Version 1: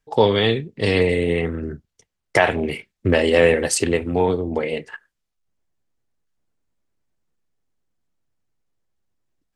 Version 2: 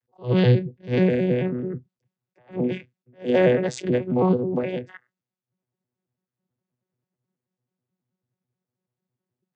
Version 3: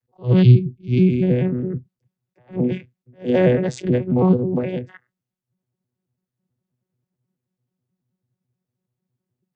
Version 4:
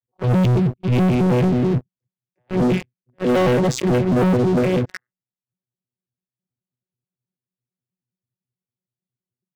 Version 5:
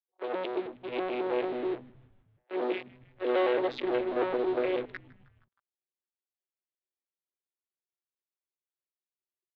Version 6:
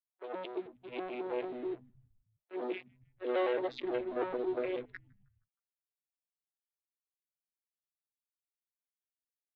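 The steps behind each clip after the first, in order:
arpeggiated vocoder bare fifth, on B2, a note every 0.108 s; attack slew limiter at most 250 dB/s
spectral gain 0.42–1.22, 400–2100 Hz -23 dB; low shelf 220 Hz +11.5 dB; gain -1 dB
sample leveller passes 5; limiter -10 dBFS, peak gain reduction 8.5 dB; gain -3.5 dB
Chebyshev band-pass 320–3900 Hz, order 4; frequency-shifting echo 0.157 s, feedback 59%, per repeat -120 Hz, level -22.5 dB; gain -8 dB
per-bin expansion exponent 1.5; gain -3.5 dB

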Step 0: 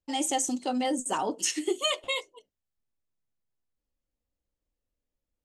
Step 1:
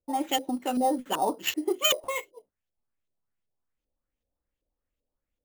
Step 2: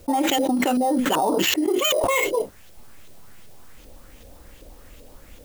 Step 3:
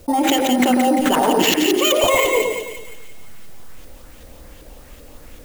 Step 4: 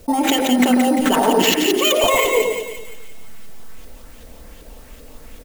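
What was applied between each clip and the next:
LFO low-pass saw up 2.6 Hz 470–3900 Hz; sample-rate reducer 9900 Hz, jitter 0%
fast leveller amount 100%
split-band echo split 2000 Hz, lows 0.105 s, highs 0.173 s, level -4 dB; gain +3 dB
comb 4.5 ms, depth 33%

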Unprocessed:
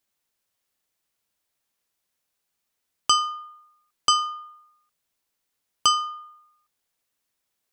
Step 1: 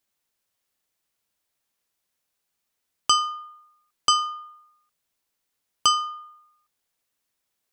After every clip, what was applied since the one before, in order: nothing audible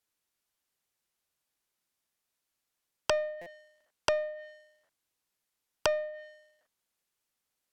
cycle switcher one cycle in 2, inverted; treble ducked by the level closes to 930 Hz, closed at -23.5 dBFS; stuck buffer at 3.41, samples 256, times 8; gain -4 dB

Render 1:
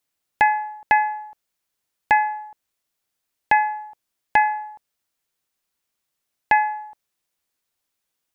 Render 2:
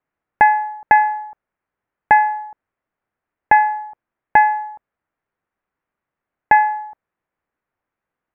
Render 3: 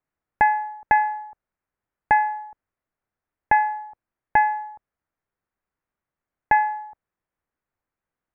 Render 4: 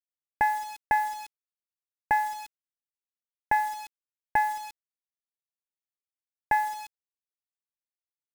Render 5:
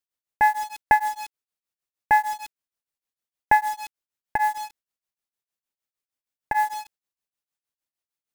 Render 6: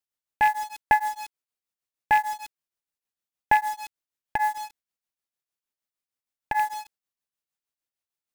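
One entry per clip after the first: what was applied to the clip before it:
LPF 1900 Hz 24 dB/oct; gain +5.5 dB
low shelf 110 Hz +8.5 dB; gain -6 dB
bit-crush 6-bit; gain -6.5 dB
beating tremolo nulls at 6.5 Hz; gain +7.5 dB
rattling part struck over -42 dBFS, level -19 dBFS; gain -2 dB

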